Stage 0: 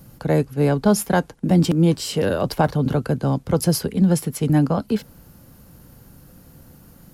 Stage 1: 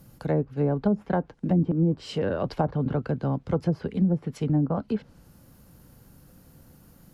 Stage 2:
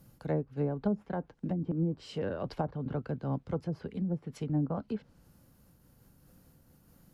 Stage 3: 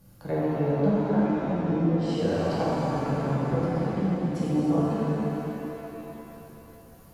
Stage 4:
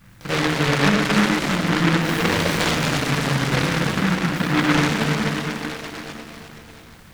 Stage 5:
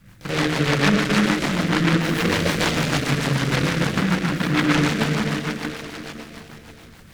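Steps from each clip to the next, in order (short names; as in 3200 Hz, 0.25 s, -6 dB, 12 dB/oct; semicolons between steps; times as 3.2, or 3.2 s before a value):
treble ducked by the level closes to 460 Hz, closed at -11.5 dBFS; gain -6 dB
noise-modulated level, depth 60%; gain -5 dB
shimmer reverb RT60 3.2 s, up +7 st, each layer -8 dB, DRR -8 dB
noise-modulated delay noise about 1400 Hz, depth 0.35 ms; gain +5.5 dB
rotary speaker horn 6.7 Hz; gain +1.5 dB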